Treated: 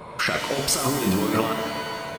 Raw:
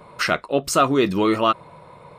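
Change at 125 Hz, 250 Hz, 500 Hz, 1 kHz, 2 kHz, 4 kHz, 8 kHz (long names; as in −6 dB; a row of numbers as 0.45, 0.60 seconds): +1.0, −3.0, −5.5, −5.5, −0.5, +1.0, +4.5 decibels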